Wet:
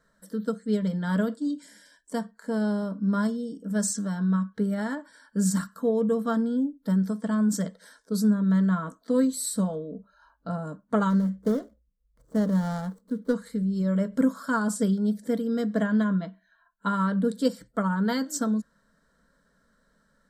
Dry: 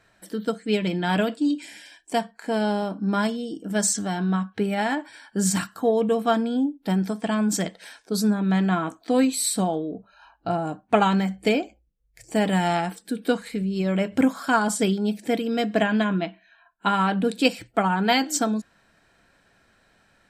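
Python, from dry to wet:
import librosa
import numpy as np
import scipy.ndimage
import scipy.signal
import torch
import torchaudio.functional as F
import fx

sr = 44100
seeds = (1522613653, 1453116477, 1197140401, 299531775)

y = fx.median_filter(x, sr, points=25, at=(11.09, 13.33), fade=0.02)
y = fx.low_shelf(y, sr, hz=390.0, db=6.5)
y = fx.fixed_phaser(y, sr, hz=510.0, stages=8)
y = y * librosa.db_to_amplitude(-5.0)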